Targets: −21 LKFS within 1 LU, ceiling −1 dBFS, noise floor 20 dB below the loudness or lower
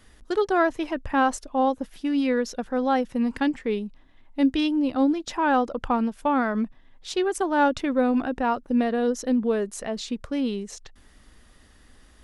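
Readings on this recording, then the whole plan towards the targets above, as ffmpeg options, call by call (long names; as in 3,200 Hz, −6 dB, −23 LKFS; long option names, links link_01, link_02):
integrated loudness −25.0 LKFS; sample peak −10.5 dBFS; target loudness −21.0 LKFS
→ -af "volume=4dB"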